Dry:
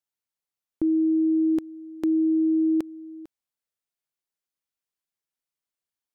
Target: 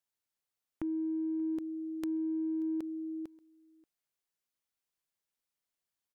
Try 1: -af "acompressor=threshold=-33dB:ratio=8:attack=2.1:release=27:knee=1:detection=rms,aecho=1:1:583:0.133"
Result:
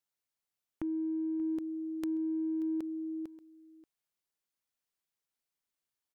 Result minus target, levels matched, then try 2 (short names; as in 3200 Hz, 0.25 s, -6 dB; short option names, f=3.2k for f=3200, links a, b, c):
echo-to-direct +6.5 dB
-af "acompressor=threshold=-33dB:ratio=8:attack=2.1:release=27:knee=1:detection=rms,aecho=1:1:583:0.0631"